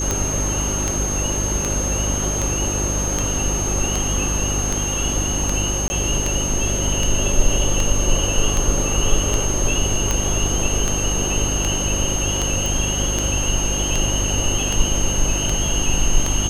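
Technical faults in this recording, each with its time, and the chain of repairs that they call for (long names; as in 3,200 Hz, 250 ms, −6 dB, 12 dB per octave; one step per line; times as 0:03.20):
mains hum 50 Hz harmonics 7 −25 dBFS
scratch tick 78 rpm −6 dBFS
whistle 6,400 Hz −23 dBFS
0:05.88–0:05.90: drop-out 20 ms
0:12.66: click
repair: click removal
hum removal 50 Hz, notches 7
notch filter 6,400 Hz, Q 30
repair the gap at 0:05.88, 20 ms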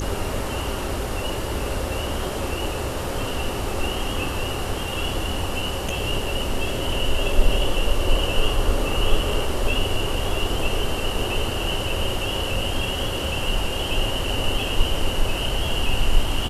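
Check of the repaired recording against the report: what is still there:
none of them is left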